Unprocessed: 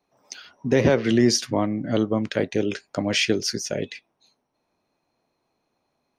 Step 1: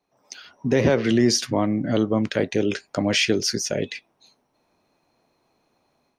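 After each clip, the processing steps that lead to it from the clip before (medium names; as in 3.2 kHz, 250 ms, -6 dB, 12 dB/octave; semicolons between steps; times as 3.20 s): level rider gain up to 8.5 dB; in parallel at 0 dB: peak limiter -13.5 dBFS, peak gain reduction 11.5 dB; on the sum: trim -8 dB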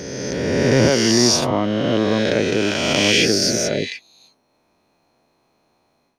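reverse spectral sustain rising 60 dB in 2.30 s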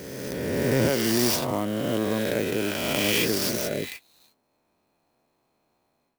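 sampling jitter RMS 0.033 ms; trim -7.5 dB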